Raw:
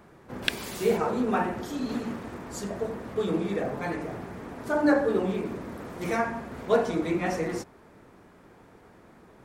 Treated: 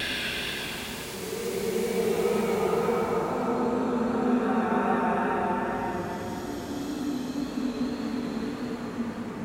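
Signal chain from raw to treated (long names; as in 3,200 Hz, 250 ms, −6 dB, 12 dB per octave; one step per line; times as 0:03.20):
extreme stretch with random phases 5.6×, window 0.50 s, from 0:00.48
tape wow and flutter 30 cents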